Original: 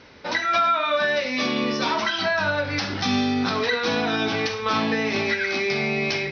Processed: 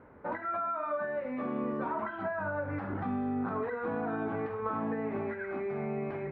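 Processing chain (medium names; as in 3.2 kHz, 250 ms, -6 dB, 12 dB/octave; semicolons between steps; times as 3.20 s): compression, threshold -24 dBFS, peak gain reduction 7 dB; low-pass 1.4 kHz 24 dB/octave; trim -4.5 dB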